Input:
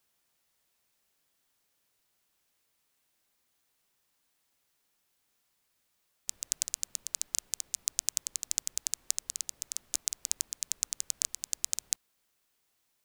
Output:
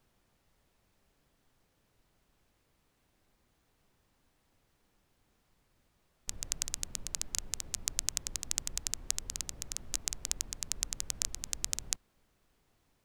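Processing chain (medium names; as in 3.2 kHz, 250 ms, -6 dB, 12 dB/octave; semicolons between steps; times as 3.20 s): tilt EQ -3.5 dB/octave; trim +7 dB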